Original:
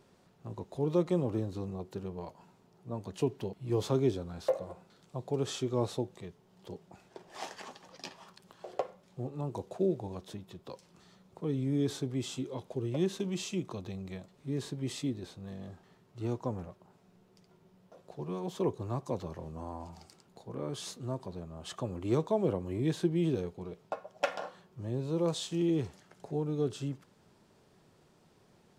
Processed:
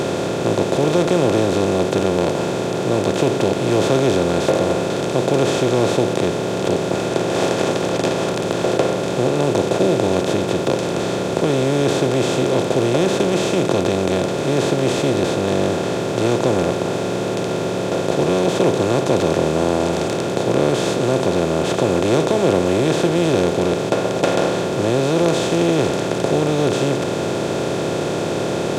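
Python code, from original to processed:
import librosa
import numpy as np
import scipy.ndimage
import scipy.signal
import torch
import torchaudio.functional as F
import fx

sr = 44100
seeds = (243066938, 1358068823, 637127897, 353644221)

y = fx.bin_compress(x, sr, power=0.2)
y = y * librosa.db_to_amplitude(6.0)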